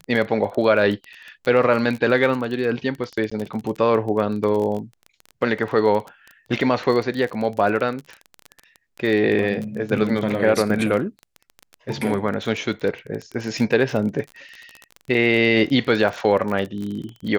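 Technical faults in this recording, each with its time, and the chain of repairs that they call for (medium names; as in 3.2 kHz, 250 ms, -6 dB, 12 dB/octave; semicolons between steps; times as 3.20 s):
crackle 23 per s -26 dBFS
3.30–3.31 s: dropout 15 ms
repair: de-click; interpolate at 3.30 s, 15 ms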